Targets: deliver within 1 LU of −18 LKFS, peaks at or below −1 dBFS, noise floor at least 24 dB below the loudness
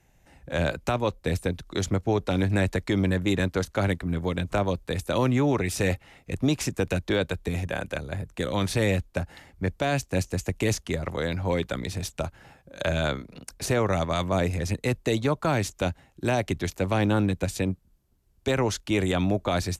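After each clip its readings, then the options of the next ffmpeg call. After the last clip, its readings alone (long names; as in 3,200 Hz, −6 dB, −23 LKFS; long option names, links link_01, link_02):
integrated loudness −27.0 LKFS; sample peak −13.5 dBFS; target loudness −18.0 LKFS
→ -af "volume=9dB"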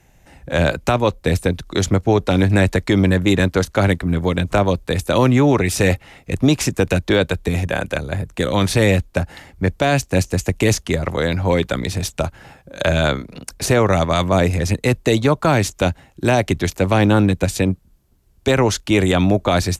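integrated loudness −18.0 LKFS; sample peak −4.5 dBFS; background noise floor −54 dBFS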